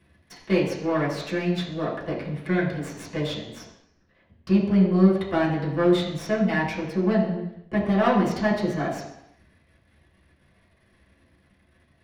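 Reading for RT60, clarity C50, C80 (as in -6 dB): 0.80 s, 5.0 dB, 7.5 dB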